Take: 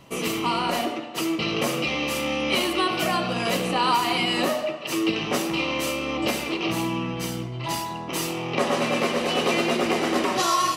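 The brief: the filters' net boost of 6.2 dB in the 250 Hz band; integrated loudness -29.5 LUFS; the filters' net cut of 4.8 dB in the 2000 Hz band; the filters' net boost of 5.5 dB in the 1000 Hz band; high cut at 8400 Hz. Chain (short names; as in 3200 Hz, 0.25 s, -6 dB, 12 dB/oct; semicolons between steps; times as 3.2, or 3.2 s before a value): LPF 8400 Hz; bell 250 Hz +8 dB; bell 1000 Hz +8 dB; bell 2000 Hz -8.5 dB; gain -8.5 dB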